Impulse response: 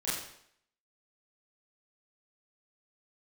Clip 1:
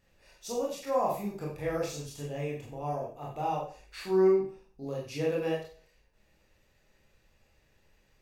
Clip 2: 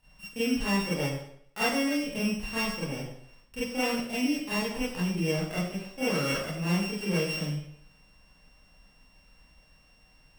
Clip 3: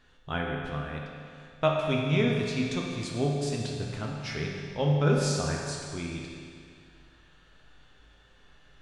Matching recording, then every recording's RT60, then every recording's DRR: 2; 0.40, 0.70, 2.3 s; -4.0, -10.5, -1.5 dB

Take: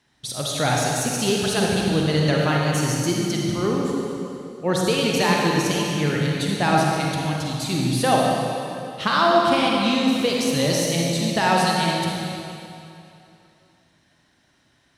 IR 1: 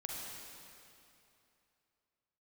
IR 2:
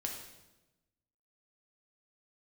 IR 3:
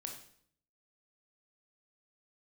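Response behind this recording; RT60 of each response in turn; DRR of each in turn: 1; 2.8, 1.0, 0.60 s; -2.5, 0.5, 2.0 dB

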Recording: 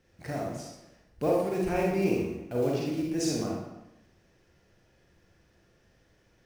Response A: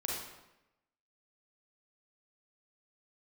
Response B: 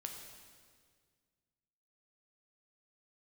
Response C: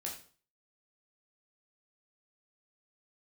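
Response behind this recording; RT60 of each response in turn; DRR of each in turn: A; 0.95, 1.8, 0.45 s; -3.0, 2.5, -2.5 dB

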